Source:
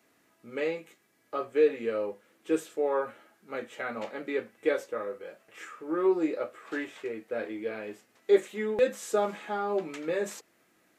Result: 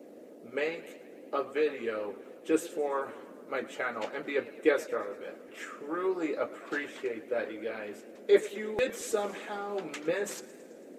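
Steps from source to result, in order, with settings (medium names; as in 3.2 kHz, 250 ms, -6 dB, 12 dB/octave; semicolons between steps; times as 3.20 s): harmonic-percussive split harmonic -11 dB; band noise 220–590 Hz -55 dBFS; modulated delay 110 ms, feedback 68%, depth 144 cents, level -18 dB; trim +4.5 dB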